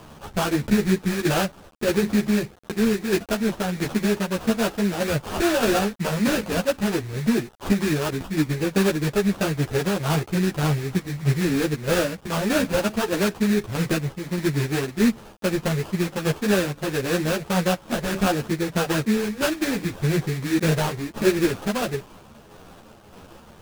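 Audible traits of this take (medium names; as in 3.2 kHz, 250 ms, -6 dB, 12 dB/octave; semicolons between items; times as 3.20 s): a quantiser's noise floor 8-bit, dither none; tremolo saw down 1.6 Hz, depth 45%; aliases and images of a low sample rate 2.1 kHz, jitter 20%; a shimmering, thickened sound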